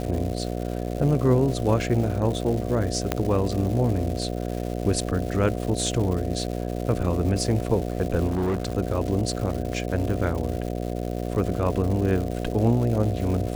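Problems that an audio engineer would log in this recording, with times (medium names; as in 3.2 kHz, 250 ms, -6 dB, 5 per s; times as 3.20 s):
buzz 60 Hz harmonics 12 -29 dBFS
crackle 310 per s -31 dBFS
3.12 s: pop -8 dBFS
8.27–8.75 s: clipped -20.5 dBFS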